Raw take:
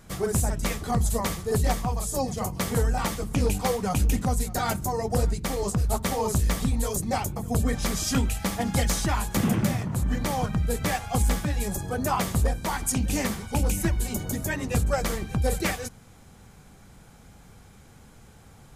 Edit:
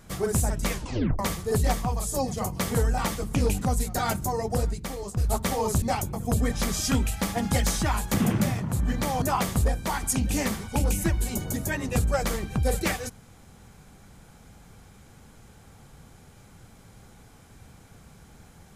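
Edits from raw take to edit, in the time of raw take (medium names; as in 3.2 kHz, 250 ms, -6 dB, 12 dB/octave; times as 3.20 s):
0.72 s: tape stop 0.47 s
3.59–4.19 s: delete
4.94–5.77 s: fade out, to -10 dB
6.42–7.05 s: delete
10.45–12.01 s: delete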